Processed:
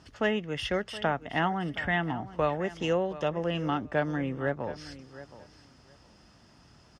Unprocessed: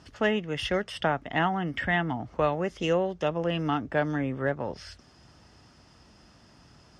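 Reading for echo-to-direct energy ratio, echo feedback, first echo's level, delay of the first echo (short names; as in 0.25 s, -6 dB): -16.0 dB, 18%, -16.0 dB, 0.72 s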